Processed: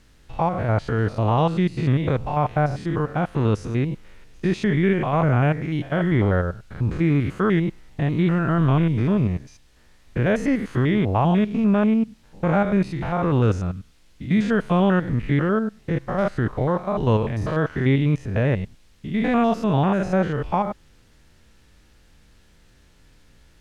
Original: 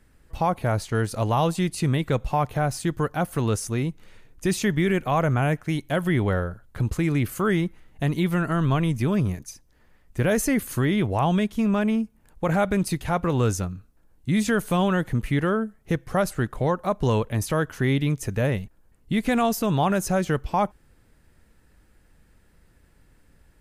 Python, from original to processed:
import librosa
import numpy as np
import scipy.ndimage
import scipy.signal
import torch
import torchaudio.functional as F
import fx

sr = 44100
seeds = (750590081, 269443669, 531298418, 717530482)

y = fx.spec_steps(x, sr, hold_ms=100)
y = fx.dmg_noise_colour(y, sr, seeds[0], colour='violet', level_db=-47.0)
y = scipy.signal.sosfilt(scipy.signal.butter(2, 3000.0, 'lowpass', fs=sr, output='sos'), y)
y = y * librosa.db_to_amplitude(4.5)